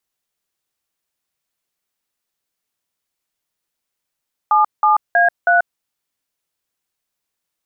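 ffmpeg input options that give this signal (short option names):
-f lavfi -i "aevalsrc='0.237*clip(min(mod(t,0.32),0.137-mod(t,0.32))/0.002,0,1)*(eq(floor(t/0.32),0)*(sin(2*PI*852*mod(t,0.32))+sin(2*PI*1209*mod(t,0.32)))+eq(floor(t/0.32),1)*(sin(2*PI*852*mod(t,0.32))+sin(2*PI*1209*mod(t,0.32)))+eq(floor(t/0.32),2)*(sin(2*PI*697*mod(t,0.32))+sin(2*PI*1633*mod(t,0.32)))+eq(floor(t/0.32),3)*(sin(2*PI*697*mod(t,0.32))+sin(2*PI*1477*mod(t,0.32))))':d=1.28:s=44100"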